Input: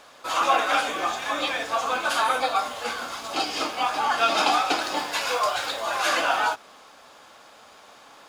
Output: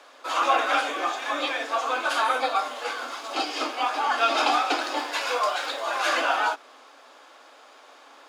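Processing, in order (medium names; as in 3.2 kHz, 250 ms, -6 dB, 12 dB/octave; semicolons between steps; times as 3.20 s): Chebyshev high-pass 250 Hz, order 10; treble shelf 7.8 kHz -8 dB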